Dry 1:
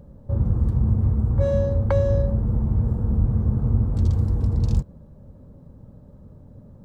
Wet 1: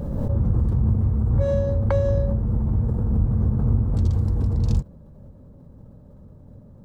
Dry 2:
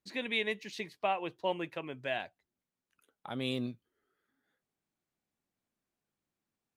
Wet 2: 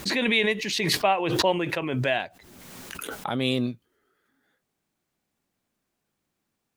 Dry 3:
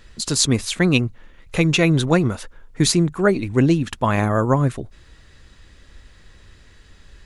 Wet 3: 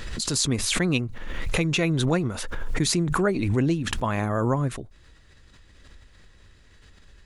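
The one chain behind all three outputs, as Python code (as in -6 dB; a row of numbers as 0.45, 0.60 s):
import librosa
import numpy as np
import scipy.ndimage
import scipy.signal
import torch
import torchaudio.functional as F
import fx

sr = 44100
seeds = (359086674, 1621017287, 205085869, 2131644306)

y = fx.pre_swell(x, sr, db_per_s=27.0)
y = librosa.util.normalize(y) * 10.0 ** (-9 / 20.0)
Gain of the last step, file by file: -1.5, +9.0, -7.5 dB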